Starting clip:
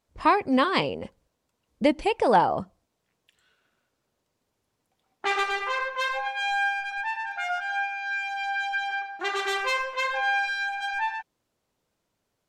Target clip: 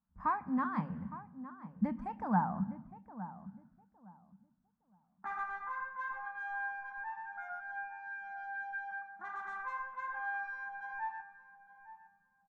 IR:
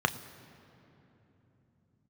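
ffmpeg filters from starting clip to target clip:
-filter_complex "[0:a]firequalizer=gain_entry='entry(120,0);entry(200,12);entry(280,-9);entry(400,-27);entry(830,-8);entry(1600,-4);entry(2600,-22);entry(4200,-29);entry(7500,-23);entry(11000,-29)':delay=0.05:min_phase=1,asplit=2[a][b];[b]adelay=862,lowpass=f=1.3k:p=1,volume=-13dB,asplit=2[c][d];[d]adelay=862,lowpass=f=1.3k:p=1,volume=0.24,asplit=2[e][f];[f]adelay=862,lowpass=f=1.3k:p=1,volume=0.24[g];[a][c][e][g]amix=inputs=4:normalize=0,asplit=2[h][i];[1:a]atrim=start_sample=2205,afade=t=out:st=0.45:d=0.01,atrim=end_sample=20286[j];[i][j]afir=irnorm=-1:irlink=0,volume=-12.5dB[k];[h][k]amix=inputs=2:normalize=0,volume=-9dB"

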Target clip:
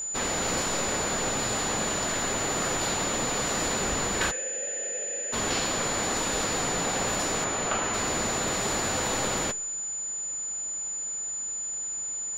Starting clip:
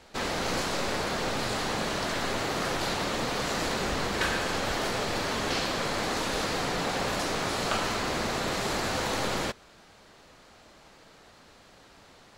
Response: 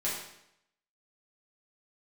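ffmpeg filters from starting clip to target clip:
-filter_complex "[0:a]asettb=1/sr,asplit=3[a][b][c];[a]atrim=end=1.934[d];[b]atrim=start=1.93:end=2.44,asetpts=PTS-STARTPTS,afade=t=in:d=0.004:c=qsin,afade=t=out:st=0.506:d=0.004:c=qsin,aeval=exprs='sgn(val(0))*max(abs(val(0))-0.0015,0)':c=same[e];[c]atrim=start=2.436[f];[d][e]acrossfade=d=0.004:c1=hsin:c2=qsin[g];[g][f]acrossfade=d=0.004:c1=qsin:c2=hsin,asplit=3[h][i][j];[h]afade=t=out:st=4.3:d=0.02[k];[i]asplit=3[l][m][n];[l]bandpass=f=530:t=q:w=8,volume=0dB[o];[m]bandpass=f=1.84k:t=q:w=8,volume=-6dB[p];[n]bandpass=f=2.48k:t=q:w=8,volume=-9dB[q];[o][p][q]amix=inputs=3:normalize=0,afade=t=in:st=4.3:d=0.02,afade=t=out:st=5.32:d=0.02[r];[j]afade=t=in:st=5.32:d=0.02[s];[k][r][s]amix=inputs=3:normalize=0,asettb=1/sr,asplit=3[t][u][v];[t]atrim=end=7.444[w];[u]atrim=start=7.44:end=7.94,asetpts=PTS-STARTPTS,afade=t=in:d=0.004:c=qsin,afade=t=out:st=0.496:d=0.004:c=qsin,bass=f=250:g=-3,treble=f=4k:g=-11[x];[v]atrim=start=7.936[y];[w][x]acrossfade=d=0.004:c1=hsin:c2=qsin[z];[z][y]acrossfade=d=0.004:c1=qsin:c2=hsin,aeval=exprs='val(0)+0.0282*sin(2*PI*7000*n/s)':c=same,asplit=2[aa][ab];[1:a]atrim=start_sample=2205[ac];[ab][ac]afir=irnorm=-1:irlink=0,volume=-25.5dB[ad];[aa][ad]amix=inputs=2:normalize=0"

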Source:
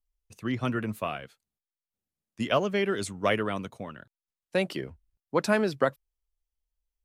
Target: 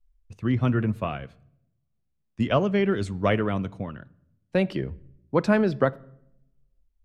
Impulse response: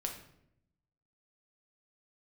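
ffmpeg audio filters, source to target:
-filter_complex "[0:a]aemphasis=mode=reproduction:type=bsi,asplit=2[a][b];[1:a]atrim=start_sample=2205,lowpass=6.9k[c];[b][c]afir=irnorm=-1:irlink=0,volume=-15dB[d];[a][d]amix=inputs=2:normalize=0"

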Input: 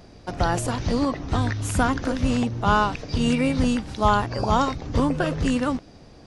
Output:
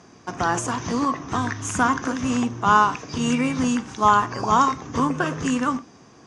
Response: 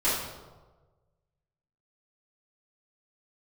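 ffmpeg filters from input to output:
-filter_complex "[0:a]highpass=150,equalizer=f=570:t=q:w=4:g=-8,equalizer=f=1.1k:t=q:w=4:g=8,equalizer=f=1.6k:t=q:w=4:g=3,equalizer=f=4.2k:t=q:w=4:g=-8,equalizer=f=6.4k:t=q:w=4:g=10,lowpass=f=9.1k:w=0.5412,lowpass=f=9.1k:w=1.3066,asplit=2[a][b];[1:a]atrim=start_sample=2205,afade=t=out:st=0.17:d=0.01,atrim=end_sample=7938[c];[b][c]afir=irnorm=-1:irlink=0,volume=-25dB[d];[a][d]amix=inputs=2:normalize=0"

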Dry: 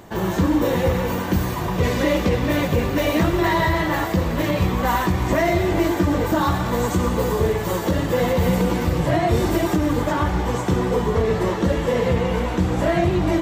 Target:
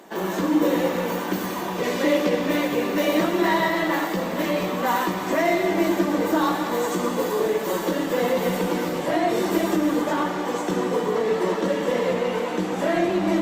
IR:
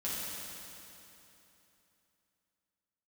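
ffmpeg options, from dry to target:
-filter_complex "[0:a]highpass=f=230:w=0.5412,highpass=f=230:w=1.3066,asplit=2[a][b];[1:a]atrim=start_sample=2205,afade=t=out:st=0.41:d=0.01,atrim=end_sample=18522,lowshelf=f=110:g=9.5[c];[b][c]afir=irnorm=-1:irlink=0,volume=-9dB[d];[a][d]amix=inputs=2:normalize=0,volume=-3.5dB" -ar 48000 -c:a libopus -b:a 48k

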